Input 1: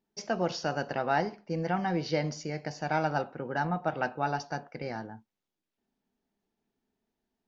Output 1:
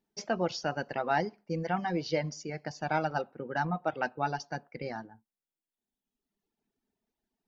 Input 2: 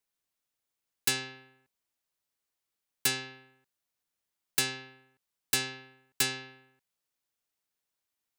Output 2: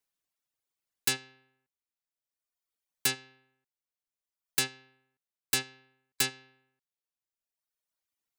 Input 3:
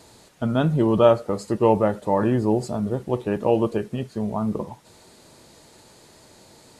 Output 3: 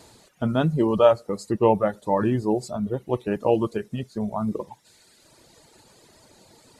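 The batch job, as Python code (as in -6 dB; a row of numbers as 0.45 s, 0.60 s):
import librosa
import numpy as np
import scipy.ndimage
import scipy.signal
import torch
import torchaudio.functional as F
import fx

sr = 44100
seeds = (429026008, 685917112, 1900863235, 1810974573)

y = fx.dereverb_blind(x, sr, rt60_s=1.5)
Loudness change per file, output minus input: -1.5 LU, 0.0 LU, -1.5 LU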